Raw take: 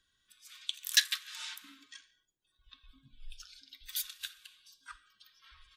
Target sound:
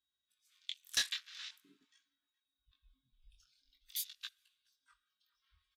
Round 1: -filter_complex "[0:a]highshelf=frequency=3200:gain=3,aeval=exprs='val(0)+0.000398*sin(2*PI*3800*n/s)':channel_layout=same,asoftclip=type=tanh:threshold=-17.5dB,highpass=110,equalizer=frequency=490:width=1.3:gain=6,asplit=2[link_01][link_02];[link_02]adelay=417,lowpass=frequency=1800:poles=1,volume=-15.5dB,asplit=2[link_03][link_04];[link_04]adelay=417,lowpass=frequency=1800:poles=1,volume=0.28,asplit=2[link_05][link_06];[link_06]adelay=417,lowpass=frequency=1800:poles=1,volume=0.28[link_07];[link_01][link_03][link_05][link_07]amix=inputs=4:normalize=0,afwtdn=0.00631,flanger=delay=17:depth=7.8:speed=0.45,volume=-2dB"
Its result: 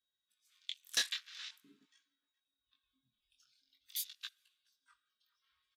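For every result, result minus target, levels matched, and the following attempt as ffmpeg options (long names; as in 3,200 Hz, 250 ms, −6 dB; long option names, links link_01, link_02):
125 Hz band −10.0 dB; 500 Hz band +4.5 dB
-filter_complex "[0:a]highshelf=frequency=3200:gain=3,aeval=exprs='val(0)+0.000398*sin(2*PI*3800*n/s)':channel_layout=same,asoftclip=type=tanh:threshold=-17.5dB,highpass=35,equalizer=frequency=490:width=1.3:gain=6,asplit=2[link_01][link_02];[link_02]adelay=417,lowpass=frequency=1800:poles=1,volume=-15.5dB,asplit=2[link_03][link_04];[link_04]adelay=417,lowpass=frequency=1800:poles=1,volume=0.28,asplit=2[link_05][link_06];[link_06]adelay=417,lowpass=frequency=1800:poles=1,volume=0.28[link_07];[link_01][link_03][link_05][link_07]amix=inputs=4:normalize=0,afwtdn=0.00631,flanger=delay=17:depth=7.8:speed=0.45,volume=-2dB"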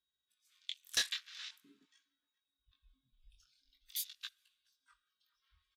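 500 Hz band +4.5 dB
-filter_complex "[0:a]highshelf=frequency=3200:gain=3,aeval=exprs='val(0)+0.000398*sin(2*PI*3800*n/s)':channel_layout=same,asoftclip=type=tanh:threshold=-17.5dB,highpass=35,asplit=2[link_01][link_02];[link_02]adelay=417,lowpass=frequency=1800:poles=1,volume=-15.5dB,asplit=2[link_03][link_04];[link_04]adelay=417,lowpass=frequency=1800:poles=1,volume=0.28,asplit=2[link_05][link_06];[link_06]adelay=417,lowpass=frequency=1800:poles=1,volume=0.28[link_07];[link_01][link_03][link_05][link_07]amix=inputs=4:normalize=0,afwtdn=0.00631,flanger=delay=17:depth=7.8:speed=0.45,volume=-2dB"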